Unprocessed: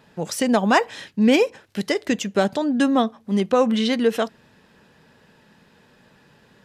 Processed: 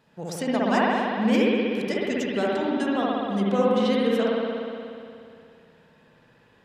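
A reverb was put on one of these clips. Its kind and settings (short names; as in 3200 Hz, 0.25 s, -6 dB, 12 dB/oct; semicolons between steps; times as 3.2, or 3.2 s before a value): spring tank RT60 2.5 s, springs 60 ms, chirp 80 ms, DRR -5.5 dB; gain -9.5 dB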